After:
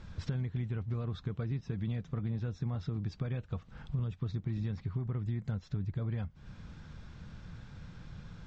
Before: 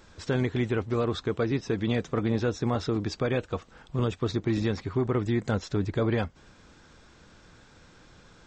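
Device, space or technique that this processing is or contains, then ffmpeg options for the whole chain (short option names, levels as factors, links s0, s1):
jukebox: -af "lowpass=5000,lowshelf=f=230:t=q:w=1.5:g=11,acompressor=threshold=0.0251:ratio=5,volume=0.794"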